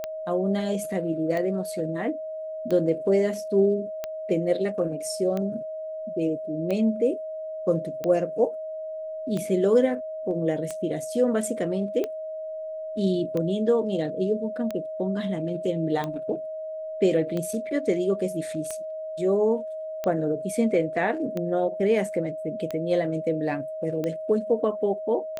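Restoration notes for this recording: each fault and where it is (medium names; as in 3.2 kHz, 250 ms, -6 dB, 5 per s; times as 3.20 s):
tick 45 rpm -17 dBFS
whine 630 Hz -31 dBFS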